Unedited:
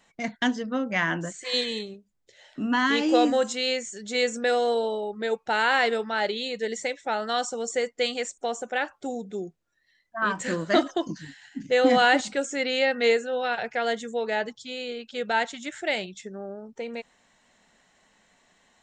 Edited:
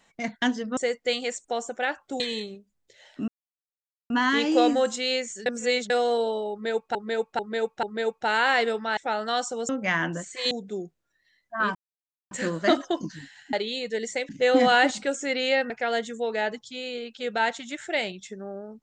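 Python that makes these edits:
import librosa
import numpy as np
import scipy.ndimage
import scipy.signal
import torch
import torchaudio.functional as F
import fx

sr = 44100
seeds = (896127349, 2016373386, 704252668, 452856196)

y = fx.edit(x, sr, fx.swap(start_s=0.77, length_s=0.82, other_s=7.7, other_length_s=1.43),
    fx.insert_silence(at_s=2.67, length_s=0.82),
    fx.reverse_span(start_s=4.03, length_s=0.44),
    fx.repeat(start_s=5.08, length_s=0.44, count=4),
    fx.move(start_s=6.22, length_s=0.76, to_s=11.59),
    fx.insert_silence(at_s=10.37, length_s=0.56),
    fx.cut(start_s=13.0, length_s=0.64), tone=tone)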